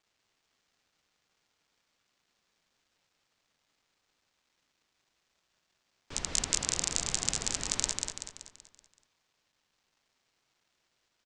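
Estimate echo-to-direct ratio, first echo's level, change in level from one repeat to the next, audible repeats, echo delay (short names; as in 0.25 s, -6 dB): -3.0 dB, -4.0 dB, -6.5 dB, 5, 0.19 s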